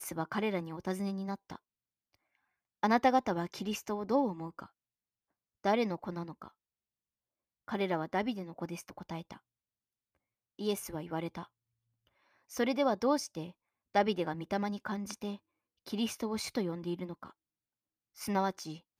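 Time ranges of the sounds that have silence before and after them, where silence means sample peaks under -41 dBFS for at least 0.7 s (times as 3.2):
2.83–4.64
5.64–6.48
7.68–9.36
10.59–11.43
12.52–17.28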